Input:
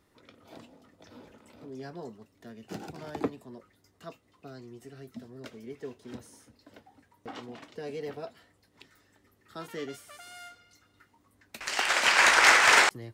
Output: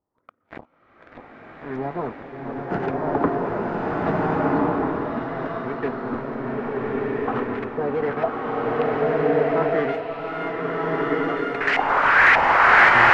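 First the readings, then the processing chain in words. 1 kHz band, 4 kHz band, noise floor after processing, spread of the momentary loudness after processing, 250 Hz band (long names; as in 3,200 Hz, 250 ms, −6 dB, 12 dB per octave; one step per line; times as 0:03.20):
+10.5 dB, can't be measured, −59 dBFS, 15 LU, +17.0 dB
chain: leveller curve on the samples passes 5
auto-filter low-pass saw up 1.7 Hz 780–2,100 Hz
slow-attack reverb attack 1,500 ms, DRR −6.5 dB
level −6.5 dB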